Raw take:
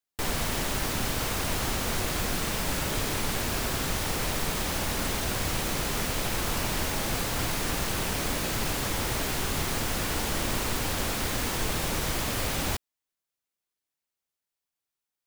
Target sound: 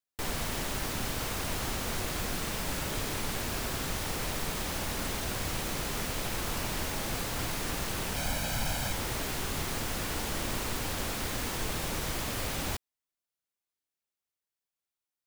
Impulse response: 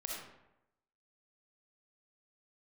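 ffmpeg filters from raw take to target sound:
-filter_complex "[0:a]asettb=1/sr,asplit=3[a][b][c];[a]atrim=end=8.164[d];[b]atrim=start=8.16:end=8.93,asetpts=PTS-STARTPTS,afade=t=in:d=0.004:c=qsin,afade=t=out:st=0.766:d=0.004:c=qsin,aecho=1:1:1.3:0.65,atrim=end_sample=33957[e];[c]atrim=start=8.926[f];[d][e]acrossfade=d=0.004:c1=hsin:c2=qsin[g];[g][f]acrossfade=d=0.004:c1=qsin:c2=hsin,volume=-4.5dB"

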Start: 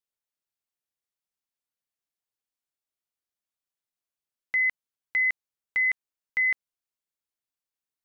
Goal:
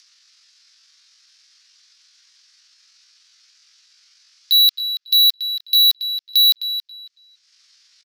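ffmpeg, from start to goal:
-filter_complex "[0:a]highpass=f=600:t=q:w=0.5412,highpass=f=600:t=q:w=1.307,lowpass=f=2.9k:t=q:w=0.5176,lowpass=f=2.9k:t=q:w=0.7071,lowpass=f=2.9k:t=q:w=1.932,afreqshift=110,alimiter=limit=-24dB:level=0:latency=1,aexciter=amount=2.4:drive=2:freq=2.3k,acompressor=mode=upward:threshold=-45dB:ratio=2.5,asoftclip=type=hard:threshold=-23dB,crystalizer=i=7:c=0,asplit=2[a][b];[b]adelay=277,lowpass=f=2.1k:p=1,volume=-8dB,asplit=2[c][d];[d]adelay=277,lowpass=f=2.1k:p=1,volume=0.27,asplit=2[e][f];[f]adelay=277,lowpass=f=2.1k:p=1,volume=0.27[g];[c][e][g]amix=inputs=3:normalize=0[h];[a][h]amix=inputs=2:normalize=0,asetrate=80880,aresample=44100,atempo=0.545254,volume=5dB"

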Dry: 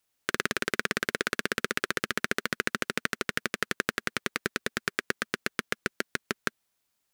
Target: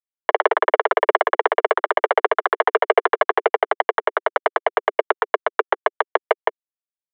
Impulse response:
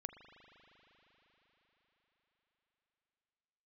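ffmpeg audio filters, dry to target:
-filter_complex "[0:a]asettb=1/sr,asplit=3[a][b][c];[a]atrim=end=2.604[d];[b]atrim=start=2.6:end=3.48,asetpts=PTS-STARTPTS,afade=t=in:d=0.004:c=qsin,afade=t=out:st=0.876:d=0.004:c=qsin,acontrast=78[e];[c]atrim=start=3.476[f];[d][e]acrossfade=d=0.004:c1=hsin:c2=qsin[g];[g][f]acrossfade=d=0.004:c1=qsin:c2=hsin,asettb=1/sr,asplit=3[h][i][j];[h]atrim=end=4.884[k];[i]atrim=start=4.88:end=5.61,asetpts=PTS-STARTPTS,afade=t=in:d=0.004:c=qsin,afade=t=out:st=0.726:d=0.004:c=qsin,equalizer=f=1.8k:t=o:w=0.39:g=-8[l];[j]atrim=start=5.606[m];[k][l]acrossfade=d=0.004:c1=hsin:c2=qsin[n];[n][m]acrossfade=d=0.004:c1=qsin:c2=hsin,acrusher=samples=19:mix=1:aa=0.000001,asoftclip=type=tanh:threshold=-19.5dB,acrusher=bits=8:mix=0:aa=0.000001,highpass=f=160:t=q:w=0.5412,highpass=f=160:t=q:w=1.307,lowpass=f=2.5k:t=q:w=0.5176,lowpass=f=2.5k:t=q:w=0.7071,lowpass=f=2.5k:t=q:w=1.932,afreqshift=230,alimiter=level_in=23.5dB:limit=-1dB:release=50:level=0:latency=1,volume=-1dB"

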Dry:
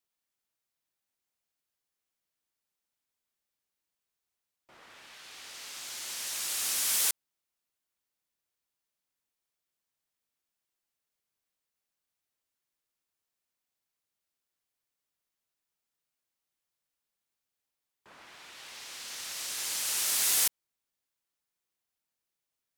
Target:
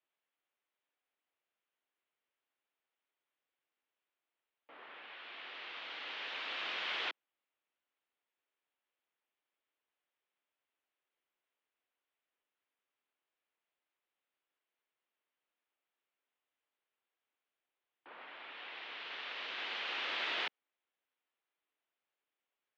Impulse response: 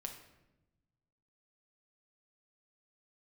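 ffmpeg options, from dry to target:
-filter_complex "[0:a]asplit=2[a][b];[b]asoftclip=type=hard:threshold=-28.5dB,volume=-7dB[c];[a][c]amix=inputs=2:normalize=0,highpass=f=370:t=q:w=0.5412,highpass=f=370:t=q:w=1.307,lowpass=f=3.4k:t=q:w=0.5176,lowpass=f=3.4k:t=q:w=0.7071,lowpass=f=3.4k:t=q:w=1.932,afreqshift=-72,volume=-1dB"

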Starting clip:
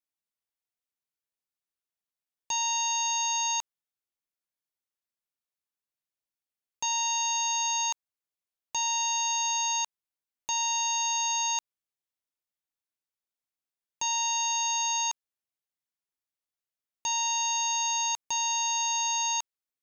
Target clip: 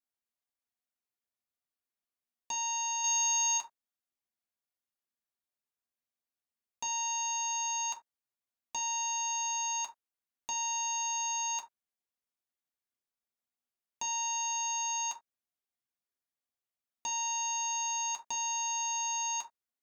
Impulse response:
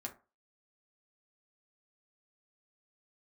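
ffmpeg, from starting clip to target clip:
-filter_complex "[0:a]asettb=1/sr,asplit=3[a][b][c];[a]atrim=end=3.044[d];[b]atrim=start=3.04:end=3.58,asetpts=PTS-STARTPTS,afade=t=in:d=0.004:c=qsin,afade=t=out:st=0.536:d=0.004:c=qsin,highshelf=f=2.5k:g=7[e];[c]atrim=start=3.576[f];[d][e]acrossfade=d=0.004:c1=hsin:c2=qsin[g];[g][f]acrossfade=d=0.004:c1=qsin:c2=hsin,acontrast=39[h];[1:a]atrim=start_sample=2205,afade=t=out:st=0.14:d=0.01,atrim=end_sample=6615[i];[h][i]afir=irnorm=-1:irlink=0,volume=-5.5dB"

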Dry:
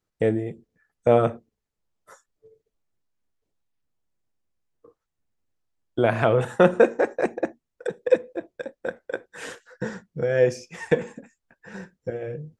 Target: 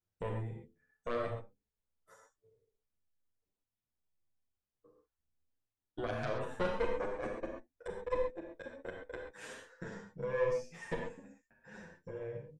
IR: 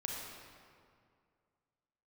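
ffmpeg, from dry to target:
-filter_complex "[0:a]lowshelf=f=150:g=4,aeval=exprs='0.668*(cos(1*acos(clip(val(0)/0.668,-1,1)))-cos(1*PI/2))+0.188*(cos(4*acos(clip(val(0)/0.668,-1,1)))-cos(4*PI/2))':c=same,acompressor=threshold=-31dB:ratio=1.5[a];[1:a]atrim=start_sample=2205,atrim=end_sample=6174[b];[a][b]afir=irnorm=-1:irlink=0,asplit=2[c][d];[d]adelay=8.7,afreqshift=0.91[e];[c][e]amix=inputs=2:normalize=1,volume=-7dB"

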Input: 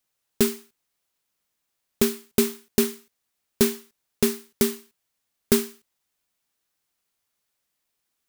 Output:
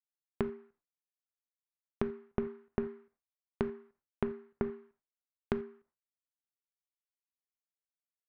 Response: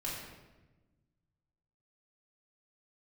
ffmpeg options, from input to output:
-filter_complex "[0:a]lowpass=f=1.6k:w=0.5412,lowpass=f=1.6k:w=1.3066,agate=range=-33dB:threshold=-55dB:ratio=3:detection=peak,acompressor=threshold=-32dB:ratio=6,asplit=2[a][b];[1:a]atrim=start_sample=2205,atrim=end_sample=3969[c];[b][c]afir=irnorm=-1:irlink=0,volume=-14.5dB[d];[a][d]amix=inputs=2:normalize=0"

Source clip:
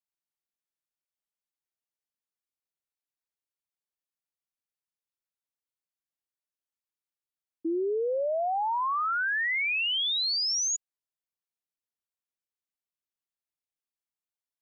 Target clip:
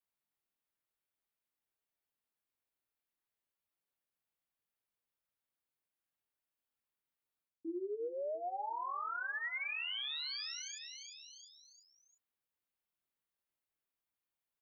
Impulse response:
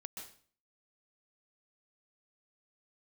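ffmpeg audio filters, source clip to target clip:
-filter_complex "[0:a]flanger=delay=19.5:depth=7:speed=0.82,aecho=1:1:349|698|1047|1396:0.15|0.0688|0.0317|0.0146,acrossover=split=3500[a][b];[b]acompressor=threshold=-46dB:ratio=4:attack=1:release=60[c];[a][c]amix=inputs=2:normalize=0,equalizer=f=6.2k:w=1.2:g=-11,areverse,acompressor=threshold=-45dB:ratio=6,areverse,volume=6dB"

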